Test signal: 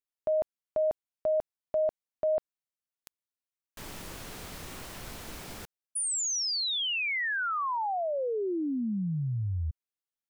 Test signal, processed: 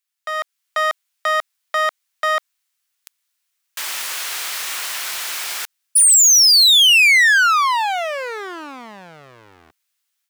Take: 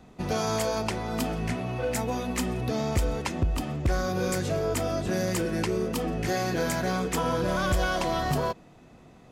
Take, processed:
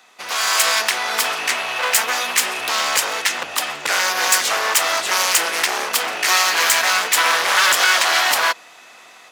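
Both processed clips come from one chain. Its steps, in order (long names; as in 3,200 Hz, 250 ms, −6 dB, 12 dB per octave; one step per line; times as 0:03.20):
wavefolder on the positive side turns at −29.5 dBFS
high-pass filter 1,400 Hz 12 dB per octave
automatic gain control gain up to 7.5 dB
boost into a limiter +14 dB
level −1 dB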